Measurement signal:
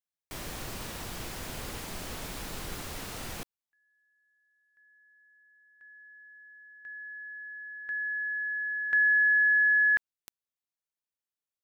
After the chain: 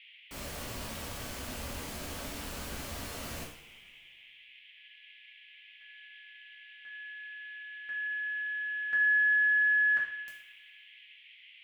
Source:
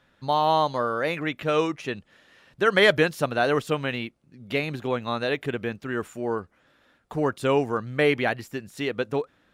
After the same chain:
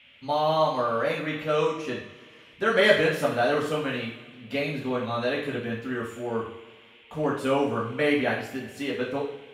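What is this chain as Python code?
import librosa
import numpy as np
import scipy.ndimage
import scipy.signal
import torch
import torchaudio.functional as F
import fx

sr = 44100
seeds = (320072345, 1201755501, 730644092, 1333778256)

y = fx.rev_double_slope(x, sr, seeds[0], early_s=0.49, late_s=1.9, knee_db=-17, drr_db=-5.0)
y = fx.dmg_noise_band(y, sr, seeds[1], low_hz=2000.0, high_hz=3300.0, level_db=-48.0)
y = y * librosa.db_to_amplitude(-7.5)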